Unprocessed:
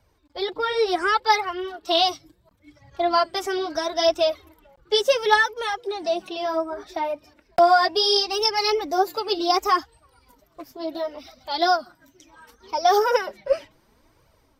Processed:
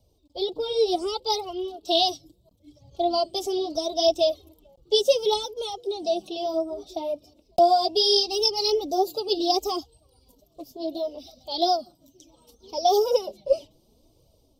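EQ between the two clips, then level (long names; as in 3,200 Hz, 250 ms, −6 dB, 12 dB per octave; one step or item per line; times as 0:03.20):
Butterworth band-reject 1,700 Hz, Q 1.5
flat-topped bell 1,500 Hz −15 dB
0.0 dB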